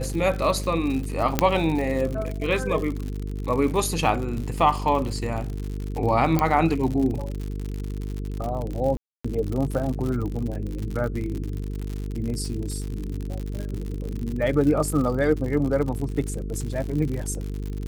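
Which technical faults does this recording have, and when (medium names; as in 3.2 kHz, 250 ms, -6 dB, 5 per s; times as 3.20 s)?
buzz 50 Hz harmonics 9 -30 dBFS
crackle 86 per s -29 dBFS
1.39 s: pop -3 dBFS
6.39 s: pop -8 dBFS
8.97–9.24 s: dropout 275 ms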